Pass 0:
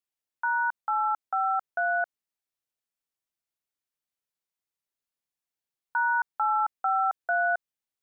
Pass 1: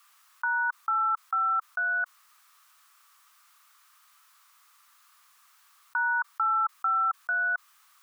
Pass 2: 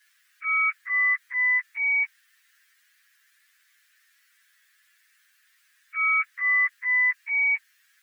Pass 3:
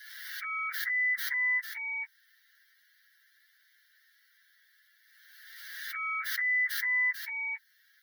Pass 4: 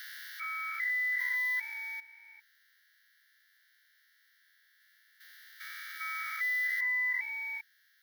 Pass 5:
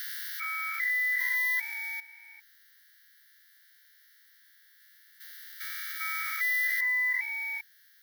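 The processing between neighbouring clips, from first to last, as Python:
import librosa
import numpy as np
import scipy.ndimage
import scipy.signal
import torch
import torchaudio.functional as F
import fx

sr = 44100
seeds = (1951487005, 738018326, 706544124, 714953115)

y1 = fx.ladder_highpass(x, sr, hz=1100.0, resonance_pct=75)
y1 = fx.env_flatten(y1, sr, amount_pct=50)
y1 = F.gain(torch.from_numpy(y1), 3.5).numpy()
y2 = fx.partial_stretch(y1, sr, pct=124)
y2 = fx.transient(y2, sr, attack_db=-6, sustain_db=0)
y2 = scipy.signal.sosfilt(scipy.signal.butter(4, 1200.0, 'highpass', fs=sr, output='sos'), y2)
y2 = F.gain(torch.from_numpy(y2), 5.0).numpy()
y3 = fx.dynamic_eq(y2, sr, hz=2400.0, q=1.1, threshold_db=-35.0, ratio=4.0, max_db=-5)
y3 = fx.fixed_phaser(y3, sr, hz=1700.0, stages=8)
y3 = fx.pre_swell(y3, sr, db_per_s=31.0)
y4 = fx.spec_steps(y3, sr, hold_ms=400)
y5 = fx.high_shelf(y4, sr, hz=5600.0, db=10.5)
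y5 = F.gain(torch.from_numpy(y5), 2.0).numpy()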